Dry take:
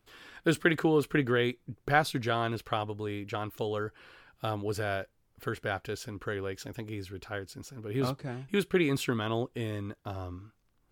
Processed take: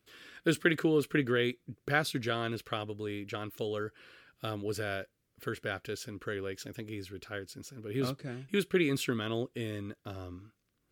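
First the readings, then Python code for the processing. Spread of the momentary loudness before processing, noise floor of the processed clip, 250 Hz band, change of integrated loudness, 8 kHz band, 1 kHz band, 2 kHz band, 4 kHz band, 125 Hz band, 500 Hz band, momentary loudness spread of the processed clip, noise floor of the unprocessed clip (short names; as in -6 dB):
14 LU, -78 dBFS, -1.5 dB, -2.0 dB, 0.0 dB, -6.5 dB, -1.5 dB, -0.5 dB, -3.5 dB, -2.0 dB, 14 LU, -71 dBFS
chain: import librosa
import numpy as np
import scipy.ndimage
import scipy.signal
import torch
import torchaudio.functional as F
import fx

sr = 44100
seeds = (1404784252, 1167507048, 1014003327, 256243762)

y = fx.highpass(x, sr, hz=140.0, slope=6)
y = fx.peak_eq(y, sr, hz=870.0, db=-13.5, octaves=0.62)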